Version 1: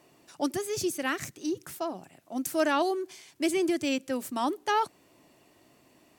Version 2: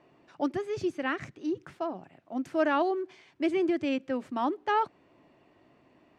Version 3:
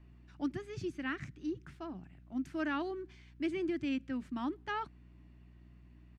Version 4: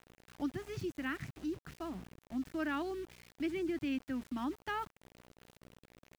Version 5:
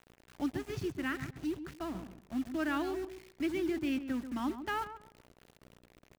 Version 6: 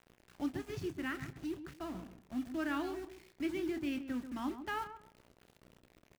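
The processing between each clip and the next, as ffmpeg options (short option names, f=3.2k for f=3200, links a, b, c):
-af "lowpass=2.4k"
-af "aeval=exprs='val(0)+0.00158*(sin(2*PI*60*n/s)+sin(2*PI*2*60*n/s)/2+sin(2*PI*3*60*n/s)/3+sin(2*PI*4*60*n/s)/4+sin(2*PI*5*60*n/s)/5)':c=same,firequalizer=gain_entry='entry(170,0);entry(320,-6);entry(490,-18);entry(1500,-6)':delay=0.05:min_phase=1"
-filter_complex "[0:a]asplit=2[a][b];[b]acompressor=threshold=-42dB:ratio=20,volume=0.5dB[c];[a][c]amix=inputs=2:normalize=0,aeval=exprs='val(0)*gte(abs(val(0)),0.00531)':c=same,volume=-3.5dB"
-filter_complex "[0:a]asplit=2[a][b];[b]acrusher=bits=6:mix=0:aa=0.000001,volume=-9.5dB[c];[a][c]amix=inputs=2:normalize=0,asplit=2[d][e];[e]adelay=136,lowpass=f=1.3k:p=1,volume=-9.5dB,asplit=2[f][g];[g]adelay=136,lowpass=f=1.3k:p=1,volume=0.24,asplit=2[h][i];[i]adelay=136,lowpass=f=1.3k:p=1,volume=0.24[j];[d][f][h][j]amix=inputs=4:normalize=0"
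-filter_complex "[0:a]asplit=2[a][b];[b]adelay=28,volume=-11dB[c];[a][c]amix=inputs=2:normalize=0,volume=-3.5dB"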